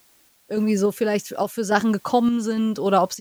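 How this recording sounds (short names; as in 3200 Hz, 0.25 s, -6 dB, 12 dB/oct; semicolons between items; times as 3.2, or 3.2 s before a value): a quantiser's noise floor 10-bit, dither triangular; random-step tremolo 3.5 Hz, depth 70%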